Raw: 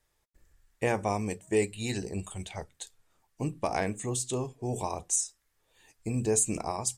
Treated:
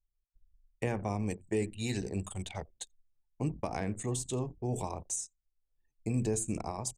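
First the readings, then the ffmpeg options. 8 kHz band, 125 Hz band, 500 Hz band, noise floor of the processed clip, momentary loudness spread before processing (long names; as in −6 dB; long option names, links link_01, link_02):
−7.5 dB, 0.0 dB, −5.5 dB, −82 dBFS, 14 LU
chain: -filter_complex "[0:a]acrossover=split=280[link_01][link_02];[link_02]acompressor=threshold=-37dB:ratio=2.5[link_03];[link_01][link_03]amix=inputs=2:normalize=0,asplit=4[link_04][link_05][link_06][link_07];[link_05]adelay=86,afreqshift=-100,volume=-17.5dB[link_08];[link_06]adelay=172,afreqshift=-200,volume=-27.7dB[link_09];[link_07]adelay=258,afreqshift=-300,volume=-37.8dB[link_10];[link_04][link_08][link_09][link_10]amix=inputs=4:normalize=0,anlmdn=0.0398"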